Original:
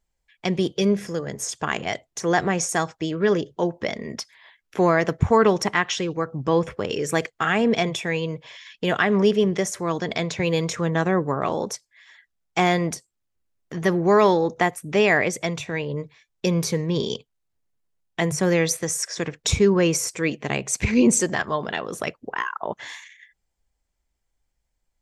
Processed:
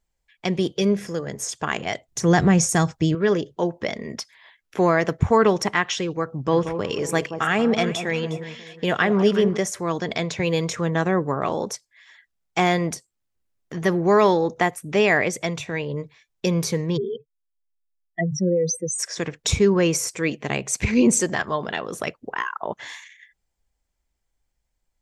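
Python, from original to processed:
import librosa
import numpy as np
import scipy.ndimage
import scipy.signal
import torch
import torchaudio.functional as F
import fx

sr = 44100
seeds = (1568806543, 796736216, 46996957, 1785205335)

y = fx.bass_treble(x, sr, bass_db=14, treble_db=4, at=(2.08, 3.15))
y = fx.echo_alternate(y, sr, ms=180, hz=1100.0, feedback_pct=52, wet_db=-8.5, at=(6.51, 9.56), fade=0.02)
y = fx.spec_expand(y, sr, power=3.5, at=(16.96, 18.98), fade=0.02)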